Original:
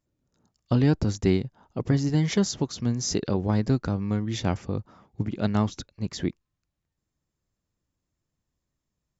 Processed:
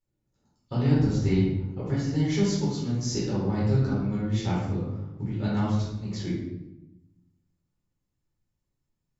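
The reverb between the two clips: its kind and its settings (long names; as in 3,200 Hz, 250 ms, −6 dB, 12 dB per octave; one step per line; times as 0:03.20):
rectangular room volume 330 cubic metres, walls mixed, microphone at 4.2 metres
level −13.5 dB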